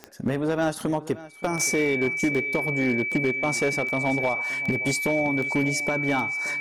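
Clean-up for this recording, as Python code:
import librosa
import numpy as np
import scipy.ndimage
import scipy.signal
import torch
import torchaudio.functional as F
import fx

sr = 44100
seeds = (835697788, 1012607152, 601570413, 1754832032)

y = fx.fix_declip(x, sr, threshold_db=-16.5)
y = fx.fix_declick_ar(y, sr, threshold=10.0)
y = fx.notch(y, sr, hz=2300.0, q=30.0)
y = fx.fix_echo_inverse(y, sr, delay_ms=574, level_db=-18.0)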